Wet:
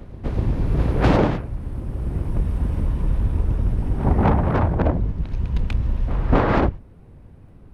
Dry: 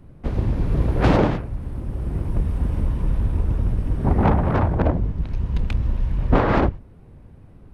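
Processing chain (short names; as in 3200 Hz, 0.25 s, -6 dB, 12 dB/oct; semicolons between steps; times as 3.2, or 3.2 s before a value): pre-echo 0.246 s -16 dB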